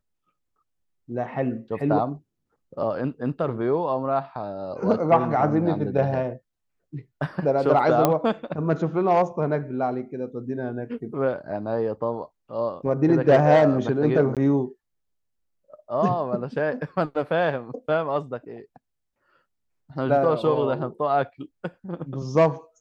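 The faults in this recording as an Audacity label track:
8.050000	8.050000	click −5 dBFS
14.350000	14.370000	drop-out 17 ms

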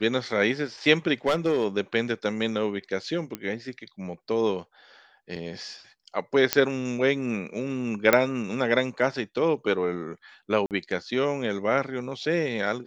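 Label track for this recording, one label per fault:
1.270000	1.650000	clipping −17.5 dBFS
3.350000	3.350000	click −16 dBFS
5.360000	5.360000	drop-out 4.7 ms
6.530000	6.530000	click −2 dBFS
8.130000	8.130000	click −4 dBFS
10.660000	10.710000	drop-out 48 ms

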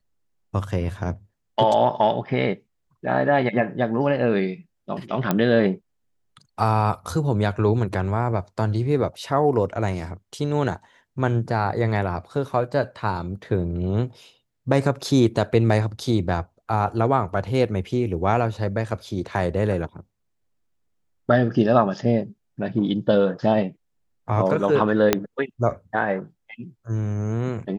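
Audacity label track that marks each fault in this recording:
5.310000	5.310000	click −7 dBFS
25.130000	25.130000	click −2 dBFS

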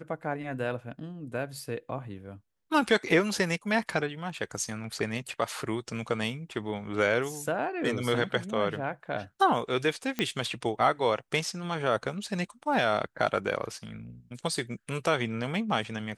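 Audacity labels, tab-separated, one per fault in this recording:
10.190000	10.190000	click −14 dBFS

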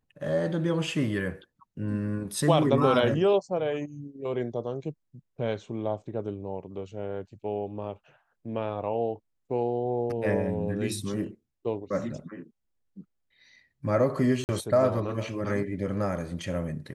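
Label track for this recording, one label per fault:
14.440000	14.490000	drop-out 49 ms

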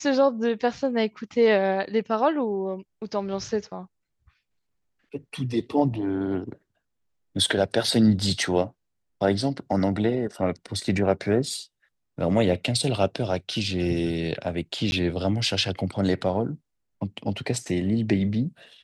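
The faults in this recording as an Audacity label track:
14.910000	14.920000	drop-out 11 ms

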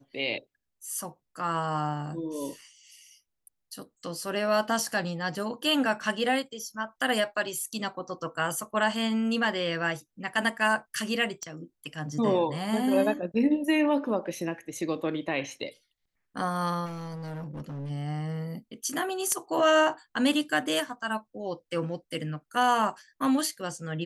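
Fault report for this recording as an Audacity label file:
11.430000	11.430000	click −23 dBFS
16.850000	17.910000	clipping −33.5 dBFS

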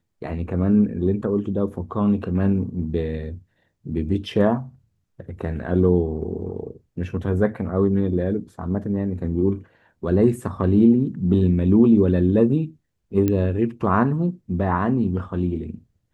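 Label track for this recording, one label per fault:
13.280000	13.280000	click −10 dBFS

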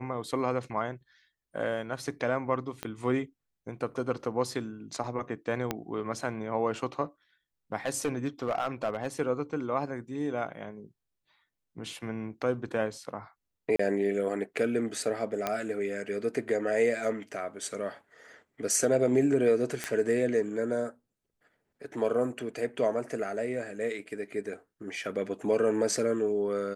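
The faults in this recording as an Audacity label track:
2.830000	2.830000	click −19 dBFS
5.710000	5.710000	click −14 dBFS
7.860000	9.070000	clipping −23.5 dBFS
13.760000	13.790000	drop-out 34 ms
15.470000	15.470000	click −14 dBFS
19.840000	19.840000	click −15 dBFS

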